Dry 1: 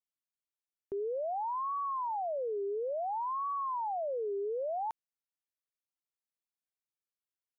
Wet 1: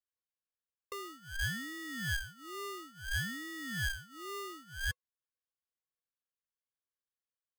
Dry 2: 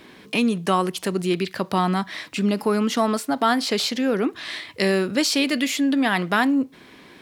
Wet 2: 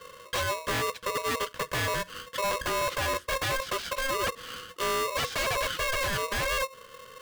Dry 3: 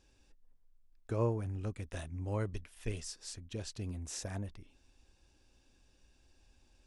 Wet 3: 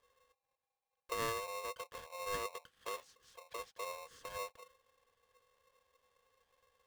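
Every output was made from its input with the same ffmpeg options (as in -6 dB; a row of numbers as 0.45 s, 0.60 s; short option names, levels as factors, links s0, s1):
-filter_complex "[0:a]asplit=3[s0][s1][s2];[s0]bandpass=f=300:t=q:w=8,volume=1[s3];[s1]bandpass=f=870:t=q:w=8,volume=0.501[s4];[s2]bandpass=f=2240:t=q:w=8,volume=0.355[s5];[s3][s4][s5]amix=inputs=3:normalize=0,aeval=exprs='0.0237*(abs(mod(val(0)/0.0237+3,4)-2)-1)':c=same,aeval=exprs='val(0)*sgn(sin(2*PI*800*n/s))':c=same,volume=2.82"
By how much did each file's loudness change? -4.0 LU, -7.0 LU, -3.5 LU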